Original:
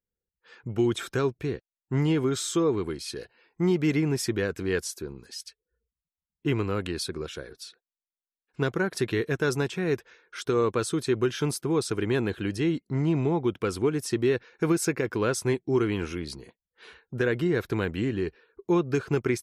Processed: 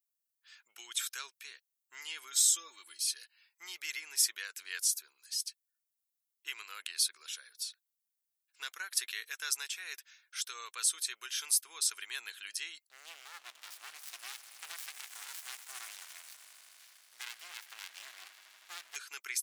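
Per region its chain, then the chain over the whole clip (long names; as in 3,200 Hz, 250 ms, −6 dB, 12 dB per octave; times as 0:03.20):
0:02.32–0:03.08: parametric band 1,600 Hz −7.5 dB 2.6 octaves + notch filter 790 Hz, Q 11 + comb filter 3.5 ms, depth 99%
0:12.89–0:18.96: echo that builds up and dies away 80 ms, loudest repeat 5, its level −18 dB + windowed peak hold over 65 samples
whole clip: high-pass filter 1,400 Hz 12 dB per octave; first difference; level +6 dB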